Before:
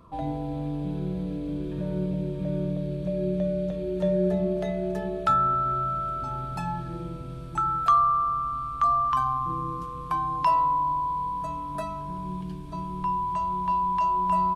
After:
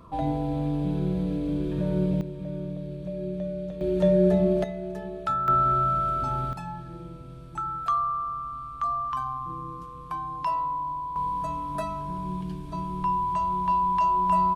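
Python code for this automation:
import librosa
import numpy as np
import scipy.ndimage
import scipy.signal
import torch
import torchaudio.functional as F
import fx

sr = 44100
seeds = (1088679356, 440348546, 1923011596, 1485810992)

y = fx.gain(x, sr, db=fx.steps((0.0, 3.5), (2.21, -5.0), (3.81, 4.0), (4.64, -5.0), (5.48, 4.0), (6.53, -5.5), (11.16, 1.5)))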